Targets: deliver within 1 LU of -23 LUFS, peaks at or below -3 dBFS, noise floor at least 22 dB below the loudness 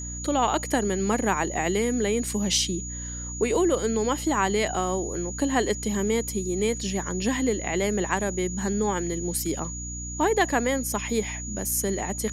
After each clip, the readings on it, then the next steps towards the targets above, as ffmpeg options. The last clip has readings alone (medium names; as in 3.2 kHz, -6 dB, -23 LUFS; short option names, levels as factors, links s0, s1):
hum 60 Hz; highest harmonic 300 Hz; hum level -34 dBFS; steady tone 6.8 kHz; tone level -35 dBFS; loudness -26.0 LUFS; peak level -8.0 dBFS; loudness target -23.0 LUFS
-> -af "bandreject=f=60:t=h:w=6,bandreject=f=120:t=h:w=6,bandreject=f=180:t=h:w=6,bandreject=f=240:t=h:w=6,bandreject=f=300:t=h:w=6"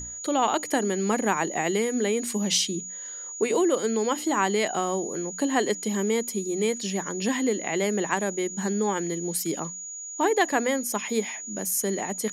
hum not found; steady tone 6.8 kHz; tone level -35 dBFS
-> -af "bandreject=f=6800:w=30"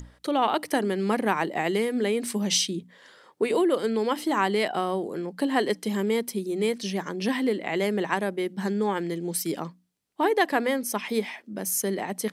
steady tone not found; loudness -26.5 LUFS; peak level -8.5 dBFS; loudness target -23.0 LUFS
-> -af "volume=1.5"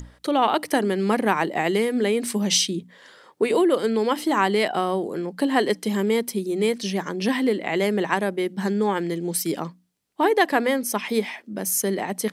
loudness -23.0 LUFS; peak level -5.0 dBFS; noise floor -55 dBFS